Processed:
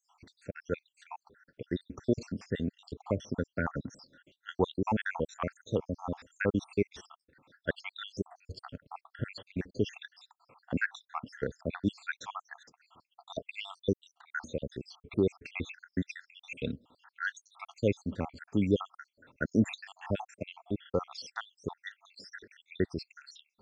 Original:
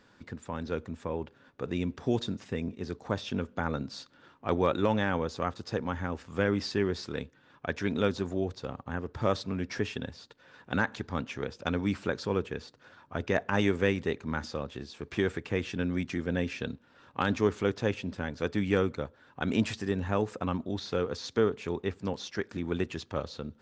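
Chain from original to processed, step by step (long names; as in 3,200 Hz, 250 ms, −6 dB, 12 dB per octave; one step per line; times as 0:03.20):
time-frequency cells dropped at random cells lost 78%
level +2 dB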